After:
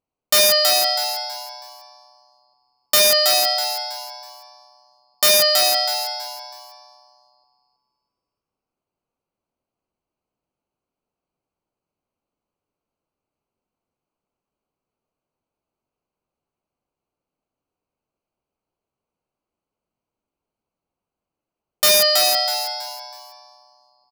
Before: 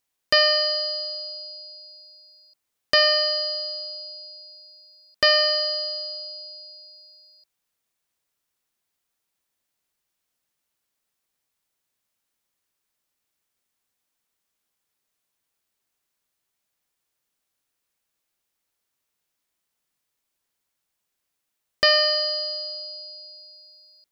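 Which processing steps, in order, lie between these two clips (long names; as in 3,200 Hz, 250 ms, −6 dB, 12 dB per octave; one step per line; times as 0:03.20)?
adaptive Wiener filter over 25 samples
wrap-around overflow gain 13 dB
echo with shifted repeats 324 ms, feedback 31%, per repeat +130 Hz, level −4.5 dB
level +5.5 dB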